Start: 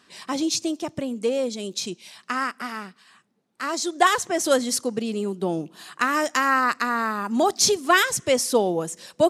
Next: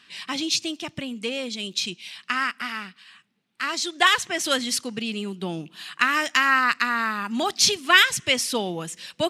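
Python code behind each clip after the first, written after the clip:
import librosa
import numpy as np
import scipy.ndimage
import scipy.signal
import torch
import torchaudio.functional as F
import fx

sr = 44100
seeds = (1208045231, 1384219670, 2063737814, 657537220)

y = fx.curve_eq(x, sr, hz=(180.0, 510.0, 1100.0, 2800.0, 6600.0), db=(0, -8, -1, 11, -1))
y = y * 10.0 ** (-1.0 / 20.0)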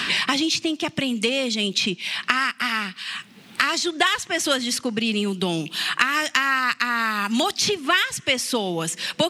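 y = fx.band_squash(x, sr, depth_pct=100)
y = y * 10.0 ** (1.0 / 20.0)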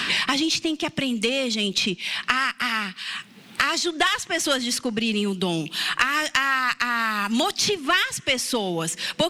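y = fx.diode_clip(x, sr, knee_db=-7.0)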